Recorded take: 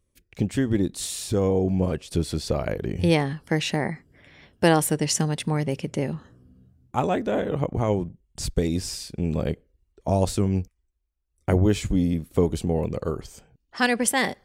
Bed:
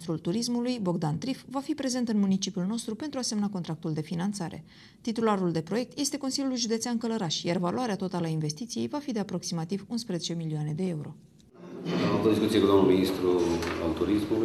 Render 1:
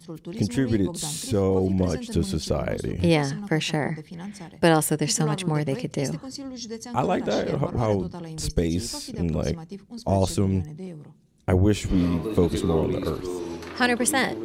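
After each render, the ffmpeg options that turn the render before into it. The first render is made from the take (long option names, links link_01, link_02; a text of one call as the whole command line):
ffmpeg -i in.wav -i bed.wav -filter_complex "[1:a]volume=-6.5dB[link_01];[0:a][link_01]amix=inputs=2:normalize=0" out.wav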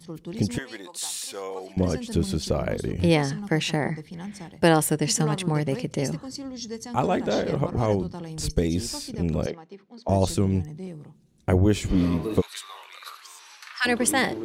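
ffmpeg -i in.wav -filter_complex "[0:a]asettb=1/sr,asplit=3[link_01][link_02][link_03];[link_01]atrim=end=0.584[link_04];[link_02]atrim=start=0.58:end=1.77,asetpts=PTS-STARTPTS,afade=type=in:duration=0.004:curve=qsin,afade=type=out:start_time=1.186:duration=0.004:curve=qsin,highpass=890[link_05];[link_03]atrim=start=1.766[link_06];[link_04][link_05]acrossfade=duration=0.004:curve1=hsin:curve2=qsin[link_07];[link_07][link_06]acrossfade=duration=0.004:curve1=qsin:curve2=hsin,asettb=1/sr,asplit=3[link_08][link_09][link_10];[link_08]atrim=end=9.464[link_11];[link_09]atrim=start=9.46:end=10.09,asetpts=PTS-STARTPTS,afade=type=in:duration=0.004:curve=qsin,afade=type=out:start_time=0.626:duration=0.004:curve=qsin,highpass=350,lowpass=3300[link_12];[link_10]atrim=start=10.086[link_13];[link_11][link_12]acrossfade=duration=0.004:curve1=hsin:curve2=qsin[link_14];[link_14][link_13]acrossfade=duration=0.004:curve1=qsin:curve2=hsin,asplit=3[link_15][link_16][link_17];[link_15]afade=type=out:start_time=12.4:duration=0.02[link_18];[link_16]highpass=frequency=1200:width=0.5412,highpass=frequency=1200:width=1.3066,afade=type=in:start_time=12.4:duration=0.02,afade=type=out:start_time=13.85:duration=0.02[link_19];[link_17]afade=type=in:start_time=13.85:duration=0.02[link_20];[link_18][link_19][link_20]amix=inputs=3:normalize=0" out.wav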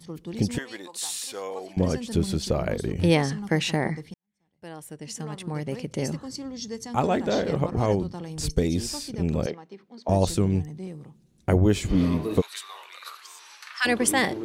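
ffmpeg -i in.wav -filter_complex "[0:a]asplit=2[link_01][link_02];[link_01]atrim=end=4.14,asetpts=PTS-STARTPTS,afade=type=out:start_time=4.136:duration=0.004:curve=hsin[link_03];[link_02]atrim=start=4.14,asetpts=PTS-STARTPTS,afade=type=in:duration=2.09:curve=qua[link_04];[link_03][link_04]concat=n=2:v=0:a=1" out.wav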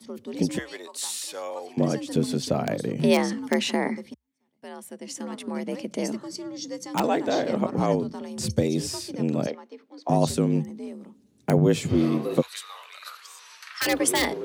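ffmpeg -i in.wav -filter_complex "[0:a]acrossover=split=780|2800[link_01][link_02][link_03];[link_02]aeval=exprs='(mod(9.44*val(0)+1,2)-1)/9.44':channel_layout=same[link_04];[link_01][link_04][link_03]amix=inputs=3:normalize=0,afreqshift=62" out.wav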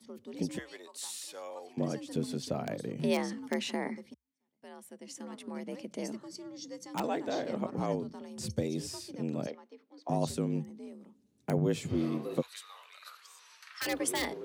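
ffmpeg -i in.wav -af "volume=-9.5dB" out.wav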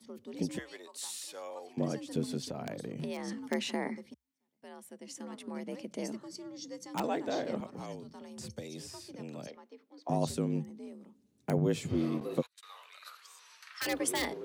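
ffmpeg -i in.wav -filter_complex "[0:a]asettb=1/sr,asplit=3[link_01][link_02][link_03];[link_01]atrim=end=2.404[link_04];[link_02]atrim=start=2.4:end=3.28,asetpts=PTS-STARTPTS,afade=type=in:duration=0.004:curve=qsin,afade=type=out:start_time=0.876:duration=0.004:curve=qsin,acompressor=threshold=-34dB:ratio=6:attack=3.2:release=140:knee=1:detection=peak[link_05];[link_03]atrim=start=3.276[link_06];[link_04][link_05]acrossfade=duration=0.004:curve1=hsin:curve2=qsin[link_07];[link_07][link_06]acrossfade=duration=0.004:curve1=qsin:curve2=hsin,asettb=1/sr,asplit=3[link_08][link_09][link_10];[link_08]atrim=end=7.604[link_11];[link_09]atrim=start=7.6:end=9.57,asetpts=PTS-STARTPTS,afade=type=in:duration=0.004:curve=qsin,afade=type=out:start_time=1.966:duration=0.004:curve=qsin,acrossover=split=180|520|2500[link_12][link_13][link_14][link_15];[link_12]acompressor=threshold=-51dB:ratio=3[link_16];[link_13]acompressor=threshold=-51dB:ratio=3[link_17];[link_14]acompressor=threshold=-48dB:ratio=3[link_18];[link_15]acompressor=threshold=-48dB:ratio=3[link_19];[link_16][link_17][link_18][link_19]amix=inputs=4:normalize=0[link_20];[link_10]atrim=start=9.566[link_21];[link_11][link_20]acrossfade=duration=0.004:curve1=hsin:curve2=qsin[link_22];[link_22][link_21]acrossfade=duration=0.004:curve1=qsin:curve2=hsin,asettb=1/sr,asplit=3[link_23][link_24][link_25];[link_23]atrim=end=12.204[link_26];[link_24]atrim=start=12.2:end=12.63,asetpts=PTS-STARTPTS,afade=type=in:duration=0.004:curve=qsin,afade=type=out:start_time=0.426:duration=0.004:curve=qsin,agate=range=-32dB:threshold=-44dB:ratio=16:release=100:detection=peak[link_27];[link_25]atrim=start=12.626[link_28];[link_26][link_27]acrossfade=duration=0.004:curve1=hsin:curve2=qsin[link_29];[link_29][link_28]acrossfade=duration=0.004:curve1=qsin:curve2=hsin" out.wav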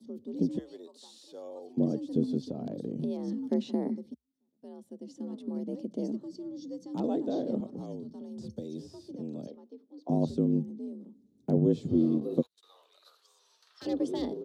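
ffmpeg -i in.wav -filter_complex "[0:a]acrossover=split=6000[link_01][link_02];[link_02]acompressor=threshold=-59dB:ratio=4:attack=1:release=60[link_03];[link_01][link_03]amix=inputs=2:normalize=0,firequalizer=gain_entry='entry(110,0);entry(240,8);entry(990,-10);entry(1400,-15);entry(2200,-22);entry(3500,-6);entry(7900,-10)':delay=0.05:min_phase=1" out.wav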